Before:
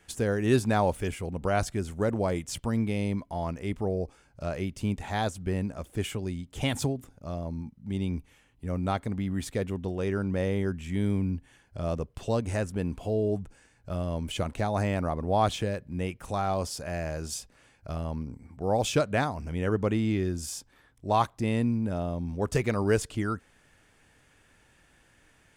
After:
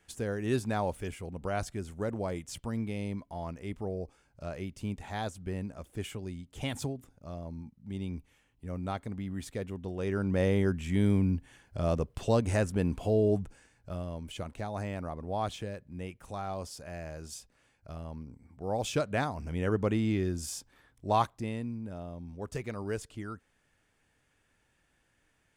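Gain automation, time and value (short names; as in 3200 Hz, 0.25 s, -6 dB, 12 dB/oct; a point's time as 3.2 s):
9.8 s -6.5 dB
10.44 s +1.5 dB
13.4 s +1.5 dB
14.2 s -8.5 dB
18.33 s -8.5 dB
19.52 s -2 dB
21.18 s -2 dB
21.62 s -10.5 dB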